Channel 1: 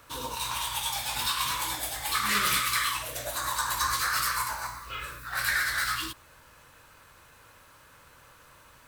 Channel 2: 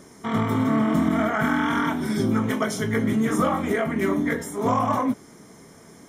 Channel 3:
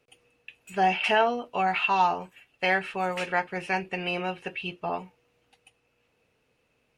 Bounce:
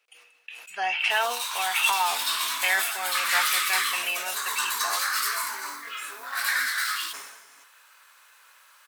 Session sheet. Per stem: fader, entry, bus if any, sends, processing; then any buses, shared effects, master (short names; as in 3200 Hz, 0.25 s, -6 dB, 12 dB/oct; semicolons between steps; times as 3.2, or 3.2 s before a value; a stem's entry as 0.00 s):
+2.0 dB, 1.00 s, no send, dry
-9.5 dB, 1.55 s, no send, AGC gain up to 7 dB; comb 7.2 ms; compressor 4:1, threshold -23 dBFS, peak gain reduction 12 dB
+2.5 dB, 0.00 s, no send, dry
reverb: off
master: HPF 1200 Hz 12 dB/oct; sustainer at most 51 dB/s